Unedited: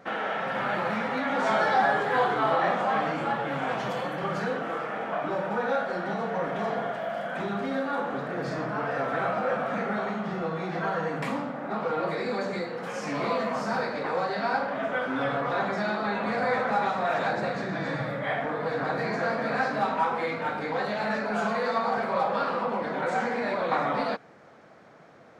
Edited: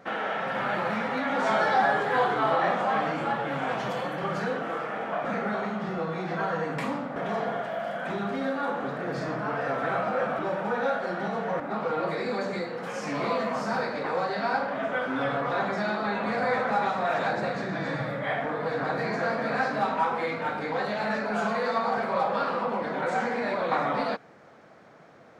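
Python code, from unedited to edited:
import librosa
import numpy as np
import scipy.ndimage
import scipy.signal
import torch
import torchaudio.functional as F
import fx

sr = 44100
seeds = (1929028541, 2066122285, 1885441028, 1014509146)

y = fx.edit(x, sr, fx.swap(start_s=5.25, length_s=1.21, other_s=9.69, other_length_s=1.91), tone=tone)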